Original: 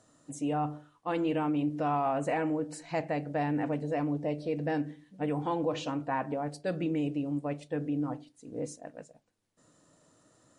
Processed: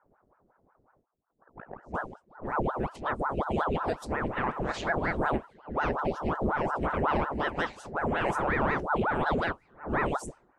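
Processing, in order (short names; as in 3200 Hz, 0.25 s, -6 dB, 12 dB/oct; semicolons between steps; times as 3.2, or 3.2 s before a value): whole clip reversed; dynamic EQ 140 Hz, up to +7 dB, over -53 dBFS, Q 4.2; flange 0.32 Hz, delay 8.1 ms, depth 9.1 ms, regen -63%; low-pass opened by the level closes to 330 Hz, open at -35 dBFS; ring modulator with a swept carrier 630 Hz, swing 90%, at 5.5 Hz; gain +8 dB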